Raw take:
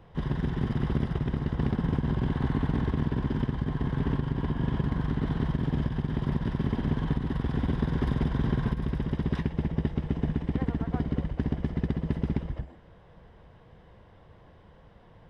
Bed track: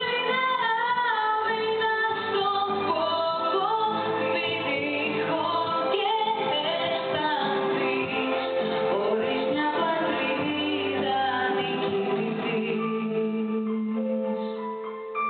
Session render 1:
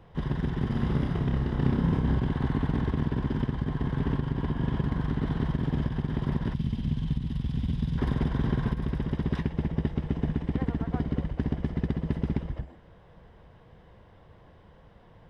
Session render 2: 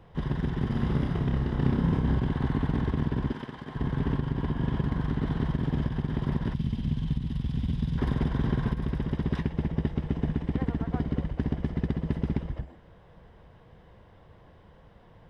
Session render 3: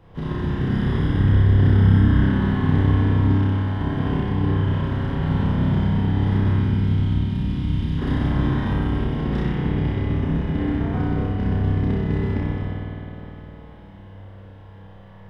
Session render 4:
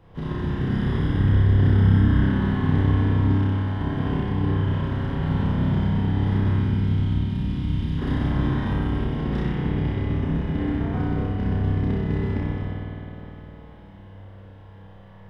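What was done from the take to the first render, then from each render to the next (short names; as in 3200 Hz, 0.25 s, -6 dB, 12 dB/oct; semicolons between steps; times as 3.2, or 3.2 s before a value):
0.69–2.19 flutter echo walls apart 5.2 m, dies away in 0.38 s; 6.54–7.98 band shelf 760 Hz -13.5 dB 3 oct
3.32–3.76 HPF 610 Hz 6 dB/oct
flutter echo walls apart 5.3 m, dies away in 0.88 s; spring tank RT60 3.9 s, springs 51 ms, chirp 65 ms, DRR -3 dB
gain -2 dB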